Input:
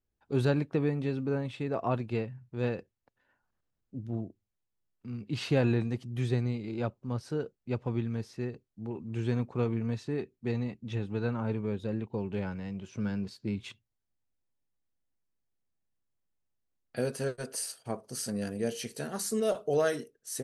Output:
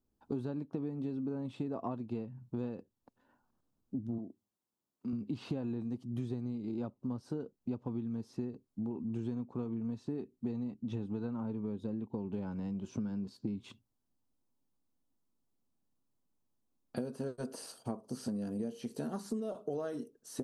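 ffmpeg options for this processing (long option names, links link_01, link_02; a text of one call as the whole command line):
ffmpeg -i in.wav -filter_complex "[0:a]asettb=1/sr,asplit=3[link_01][link_02][link_03];[link_01]atrim=end=4.184[link_04];[link_02]atrim=start=4.18:end=5.13,asetpts=PTS-STARTPTS,afade=type=in:duration=0.004:curve=qsin,afade=type=out:start_time=0.946:duration=0.004:curve=qsin,highpass=frequency=290:poles=1[link_05];[link_03]atrim=start=5.126[link_06];[link_04][link_05]acrossfade=duration=0.004:curve1=hsin:curve2=qsin[link_07];[link_07][link_06]acrossfade=duration=0.004:curve1=qsin:curve2=hsin,acrossover=split=3700[link_08][link_09];[link_09]acompressor=threshold=-50dB:ratio=4:attack=1:release=60[link_10];[link_08][link_10]amix=inputs=2:normalize=0,equalizer=frequency=250:width_type=o:width=1:gain=11,equalizer=frequency=1000:width_type=o:width=1:gain=6,equalizer=frequency=2000:width_type=o:width=1:gain=-10,acompressor=threshold=-35dB:ratio=12,volume=1dB" out.wav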